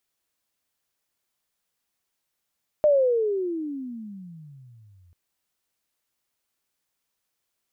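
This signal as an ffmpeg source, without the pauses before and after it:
-f lavfi -i "aevalsrc='pow(10,(-14-39*t/2.29)/20)*sin(2*PI*613*2.29/(-34.5*log(2)/12)*(exp(-34.5*log(2)/12*t/2.29)-1))':d=2.29:s=44100"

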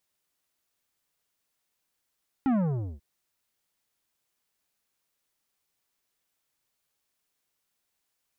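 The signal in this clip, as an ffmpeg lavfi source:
-f lavfi -i "aevalsrc='0.075*clip((0.54-t)/0.48,0,1)*tanh(3.76*sin(2*PI*280*0.54/log(65/280)*(exp(log(65/280)*t/0.54)-1)))/tanh(3.76)':d=0.54:s=44100"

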